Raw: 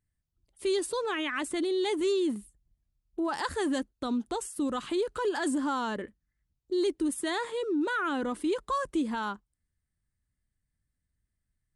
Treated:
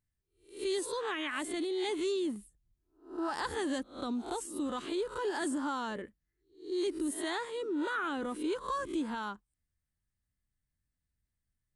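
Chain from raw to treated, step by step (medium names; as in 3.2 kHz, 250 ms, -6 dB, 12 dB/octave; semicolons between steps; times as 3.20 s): reverse spectral sustain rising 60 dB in 0.39 s; trim -5.5 dB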